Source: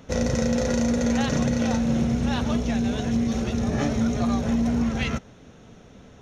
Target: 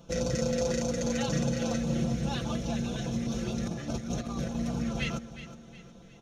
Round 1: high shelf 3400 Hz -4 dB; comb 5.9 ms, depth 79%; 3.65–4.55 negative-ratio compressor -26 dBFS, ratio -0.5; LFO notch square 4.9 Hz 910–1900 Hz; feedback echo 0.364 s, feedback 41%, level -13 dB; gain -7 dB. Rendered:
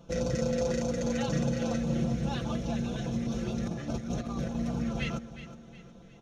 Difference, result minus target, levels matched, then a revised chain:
8000 Hz band -5.0 dB
high shelf 3400 Hz +2.5 dB; comb 5.9 ms, depth 79%; 3.65–4.55 negative-ratio compressor -26 dBFS, ratio -0.5; LFO notch square 4.9 Hz 910–1900 Hz; feedback echo 0.364 s, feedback 41%, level -13 dB; gain -7 dB

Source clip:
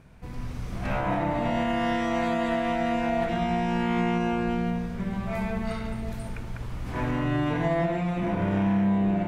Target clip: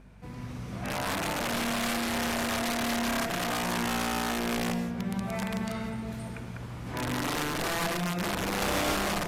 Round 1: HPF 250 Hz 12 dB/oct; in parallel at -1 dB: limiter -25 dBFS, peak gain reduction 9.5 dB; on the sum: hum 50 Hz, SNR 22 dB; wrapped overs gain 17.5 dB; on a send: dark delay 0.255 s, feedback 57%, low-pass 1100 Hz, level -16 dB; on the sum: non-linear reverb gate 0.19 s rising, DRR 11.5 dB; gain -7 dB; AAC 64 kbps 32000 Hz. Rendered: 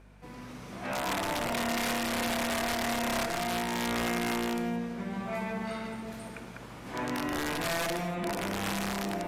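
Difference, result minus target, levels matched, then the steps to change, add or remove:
125 Hz band -3.5 dB
change: HPF 100 Hz 12 dB/oct

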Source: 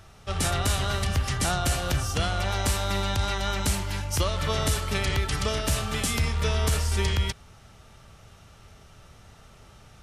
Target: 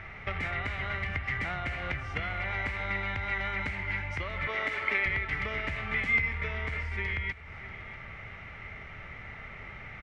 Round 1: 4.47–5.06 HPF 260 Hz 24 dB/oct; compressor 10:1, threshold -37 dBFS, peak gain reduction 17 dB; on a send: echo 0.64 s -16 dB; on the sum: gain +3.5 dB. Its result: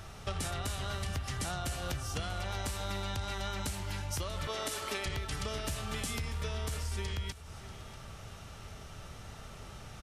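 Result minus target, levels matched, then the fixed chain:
2000 Hz band -8.0 dB
4.47–5.06 HPF 260 Hz 24 dB/oct; compressor 10:1, threshold -37 dBFS, peak gain reduction 17 dB; synth low-pass 2100 Hz, resonance Q 12; on a send: echo 0.64 s -16 dB; on the sum: gain +3.5 dB

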